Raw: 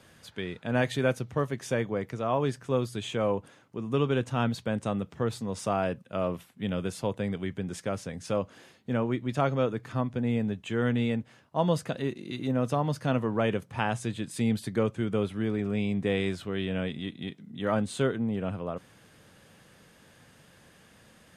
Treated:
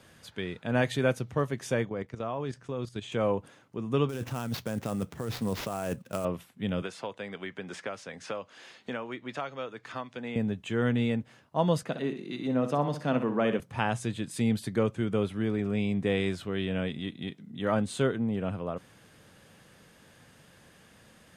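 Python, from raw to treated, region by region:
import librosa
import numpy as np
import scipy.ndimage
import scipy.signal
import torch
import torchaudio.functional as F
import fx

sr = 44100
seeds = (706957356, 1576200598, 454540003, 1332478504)

y = fx.chain(x, sr, fx.lowpass(hz=7900.0, slope=12),
    fx.level_steps(step_db=11), at=(1.85, 3.12))
y = fx.chain(y, sr, fx.over_compress(threshold_db=-32.0, ratio=-1.0),
    fx.sample_hold(seeds[0], rate_hz=8900.0, jitter_pct=20), at=(4.09, 6.25))
y = fx.chain(y, sr, fx.highpass(hz=1100.0, slope=6),
    fx.air_absorb(metres=71.0),
    fx.band_squash(depth_pct=100), at=(6.82, 10.36))
y = fx.chain(y, sr, fx.highpass(hz=150.0, slope=24),
    fx.high_shelf(hz=6200.0, db=-9.5),
    fx.room_flutter(wall_m=10.7, rt60_s=0.38), at=(11.83, 13.6))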